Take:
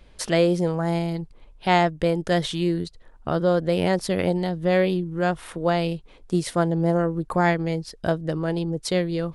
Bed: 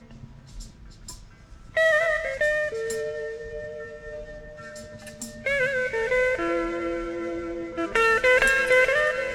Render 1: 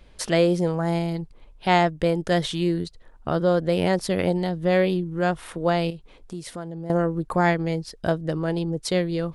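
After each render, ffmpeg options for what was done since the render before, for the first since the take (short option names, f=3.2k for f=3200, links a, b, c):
-filter_complex "[0:a]asettb=1/sr,asplit=3[a][b][c];[a]atrim=end=5.904[d];[b]atrim=start=5.9:end=6.9,asetpts=PTS-STARTPTS,afade=t=in:d=0.004:c=qsin,afade=t=out:st=0.996:d=0.004:c=qsin,acompressor=threshold=-36dB:ratio=2.5:attack=3.2:release=140:knee=1:detection=peak[e];[c]atrim=start=6.896[f];[d][e]acrossfade=d=0.004:c1=hsin:c2=qsin[g];[g][f]acrossfade=d=0.004:c1=qsin:c2=hsin"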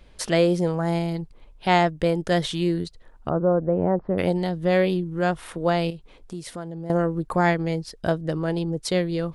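-filter_complex "[0:a]asettb=1/sr,asplit=3[a][b][c];[a]atrim=end=3.294[d];[b]atrim=start=3.29:end=4.18,asetpts=PTS-STARTPTS,afade=t=in:d=0.004:c=qsin,afade=t=out:st=0.886:d=0.004:c=qsin,lowpass=f=1.2k:w=0.5412,lowpass=f=1.2k:w=1.3066[e];[c]atrim=start=4.176[f];[d][e]acrossfade=d=0.004:c1=hsin:c2=qsin[g];[g][f]acrossfade=d=0.004:c1=qsin:c2=hsin"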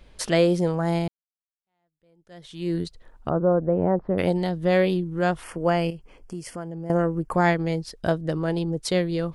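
-filter_complex "[0:a]asettb=1/sr,asplit=3[a][b][c];[a]atrim=end=5.434[d];[b]atrim=start=5.43:end=7.33,asetpts=PTS-STARTPTS,afade=t=in:d=0.004:c=qsin,afade=t=out:st=1.896:d=0.004:c=qsin,asuperstop=centerf=3800:order=4:qfactor=2.9[e];[c]atrim=start=7.326[f];[d][e]acrossfade=d=0.004:c1=hsin:c2=qsin[g];[g][f]acrossfade=d=0.004:c1=qsin:c2=hsin,asplit=2[h][i];[h]atrim=end=1.08,asetpts=PTS-STARTPTS,afade=t=out:st=1.076:d=0.004:c=hsin[j];[i]atrim=start=1.08,asetpts=PTS-STARTPTS,afade=t=in:d=1.67:c=exp[k];[j][k]concat=n=2:v=0:a=1"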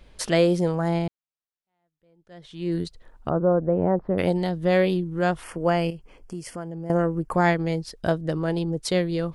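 -filter_complex "[0:a]asettb=1/sr,asplit=3[a][b][c];[a]atrim=end=0.884[d];[b]atrim=start=0.88:end=2.72,asetpts=PTS-STARTPTS,afade=t=in:d=0.004:c=qsin,afade=t=out:st=1.836:d=0.004:c=qsin,lowpass=f=3.9k:p=1[e];[c]atrim=start=2.716[f];[d][e]acrossfade=d=0.004:c1=hsin:c2=qsin[g];[g][f]acrossfade=d=0.004:c1=qsin:c2=hsin"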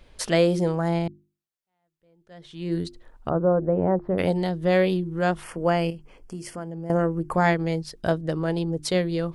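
-af "bandreject=f=50:t=h:w=6,bandreject=f=100:t=h:w=6,bandreject=f=150:t=h:w=6,bandreject=f=200:t=h:w=6,bandreject=f=250:t=h:w=6,bandreject=f=300:t=h:w=6,bandreject=f=350:t=h:w=6"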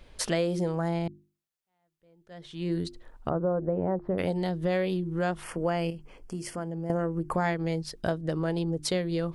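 -af "acompressor=threshold=-26dB:ratio=3"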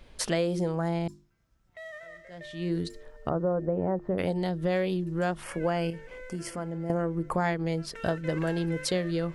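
-filter_complex "[1:a]volume=-23dB[a];[0:a][a]amix=inputs=2:normalize=0"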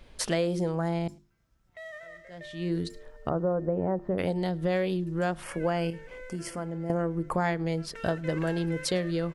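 -filter_complex "[0:a]asplit=2[a][b];[b]adelay=105,volume=-27dB,highshelf=f=4k:g=-2.36[c];[a][c]amix=inputs=2:normalize=0"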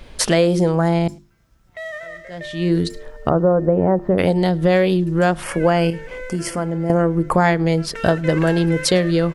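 -af "volume=12dB,alimiter=limit=-3dB:level=0:latency=1"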